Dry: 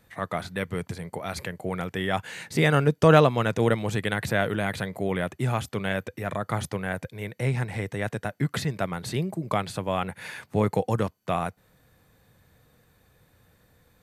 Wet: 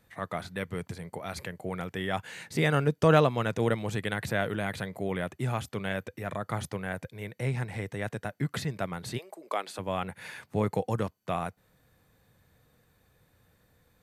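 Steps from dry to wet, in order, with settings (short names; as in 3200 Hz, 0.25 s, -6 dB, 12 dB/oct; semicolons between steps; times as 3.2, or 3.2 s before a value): 9.17–9.78 HPF 580 Hz -> 250 Hz 24 dB/oct; gain -4.5 dB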